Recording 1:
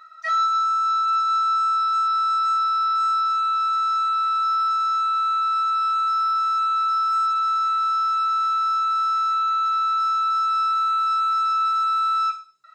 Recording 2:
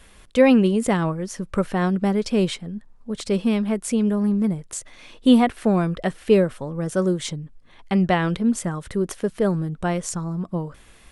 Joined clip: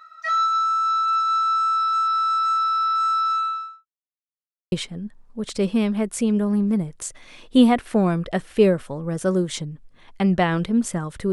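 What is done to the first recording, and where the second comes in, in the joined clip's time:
recording 1
3.34–3.86 s: studio fade out
3.86–4.72 s: mute
4.72 s: go over to recording 2 from 2.43 s

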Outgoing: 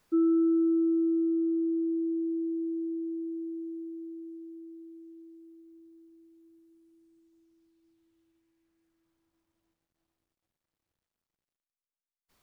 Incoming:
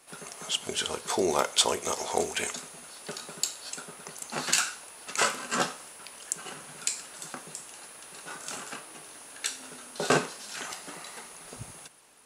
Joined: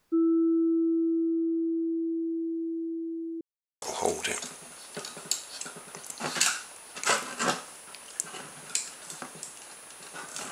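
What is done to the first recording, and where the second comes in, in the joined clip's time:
outgoing
3.41–3.82 s: mute
3.82 s: go over to incoming from 1.94 s

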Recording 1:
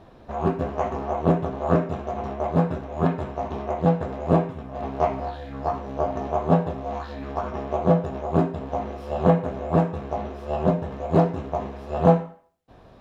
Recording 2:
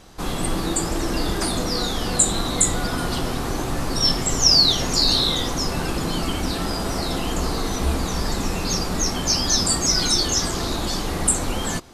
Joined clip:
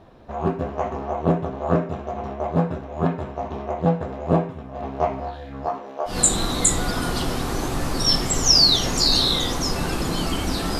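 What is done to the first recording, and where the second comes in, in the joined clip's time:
recording 1
5.65–6.19 s: high-pass 170 Hz -> 940 Hz
6.12 s: go over to recording 2 from 2.08 s, crossfade 0.14 s

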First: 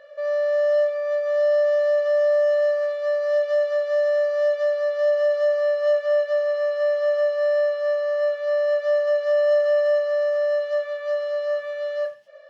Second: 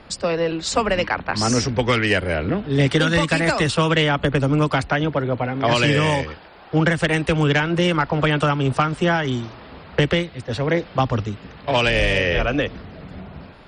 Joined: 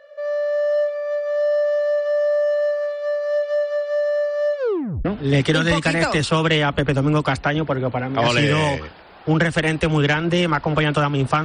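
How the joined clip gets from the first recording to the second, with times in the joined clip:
first
4.57 s: tape stop 0.48 s
5.05 s: go over to second from 2.51 s

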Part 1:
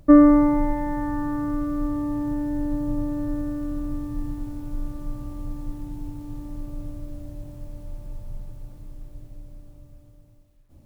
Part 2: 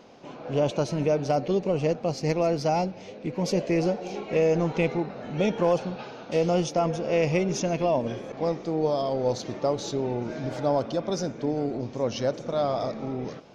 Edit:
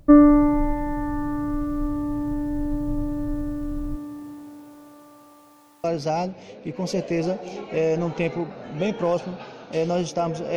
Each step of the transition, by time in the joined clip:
part 1
3.95–5.84 s: high-pass 230 Hz -> 980 Hz
5.84 s: go over to part 2 from 2.43 s

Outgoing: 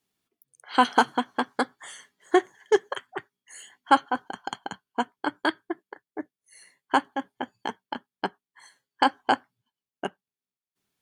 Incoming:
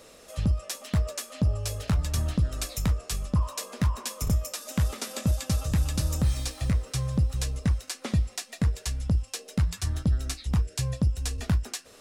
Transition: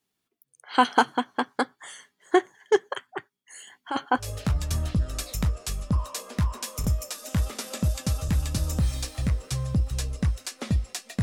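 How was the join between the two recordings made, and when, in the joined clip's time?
outgoing
3.67–4.29 s: compressor with a negative ratio -23 dBFS, ratio -1
4.23 s: go over to incoming from 1.66 s, crossfade 0.12 s

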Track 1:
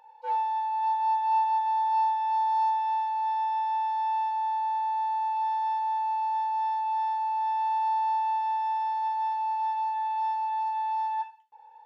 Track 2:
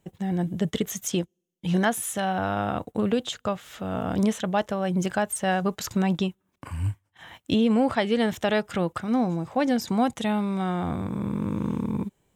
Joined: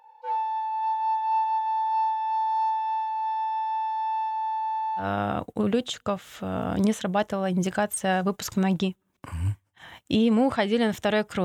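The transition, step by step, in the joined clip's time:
track 1
5.02 s: go over to track 2 from 2.41 s, crossfade 0.12 s

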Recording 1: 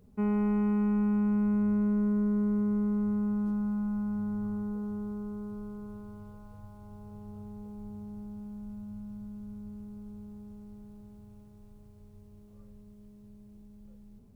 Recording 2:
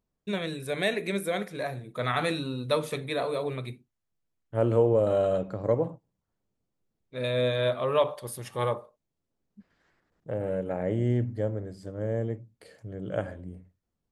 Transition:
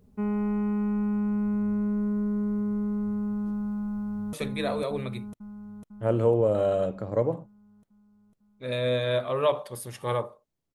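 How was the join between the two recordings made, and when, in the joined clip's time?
recording 1
3.90–4.33 s: echo throw 500 ms, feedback 65%, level -2.5 dB
4.33 s: go over to recording 2 from 2.85 s

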